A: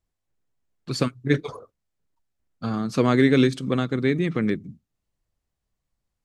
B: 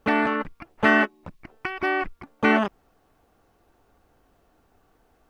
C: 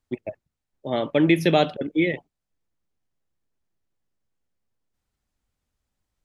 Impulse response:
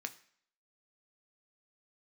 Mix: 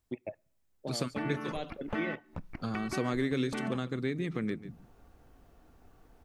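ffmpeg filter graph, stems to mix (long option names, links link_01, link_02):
-filter_complex "[0:a]highshelf=frequency=7900:gain=10,volume=-1.5dB,asplit=3[link_01][link_02][link_03];[link_02]volume=-18dB[link_04];[1:a]lowshelf=frequency=220:gain=10.5,acompressor=threshold=-27dB:ratio=3,adelay=1100,volume=-3.5dB,asplit=2[link_05][link_06];[link_06]volume=-8dB[link_07];[2:a]volume=-4.5dB,asplit=2[link_08][link_09];[link_09]volume=-17.5dB[link_10];[link_03]apad=whole_len=275600[link_11];[link_08][link_11]sidechaincompress=threshold=-33dB:ratio=8:attack=16:release=582[link_12];[3:a]atrim=start_sample=2205[link_13];[link_07][link_10]amix=inputs=2:normalize=0[link_14];[link_14][link_13]afir=irnorm=-1:irlink=0[link_15];[link_04]aecho=0:1:142:1[link_16];[link_01][link_05][link_12][link_15][link_16]amix=inputs=5:normalize=0,acompressor=threshold=-37dB:ratio=2"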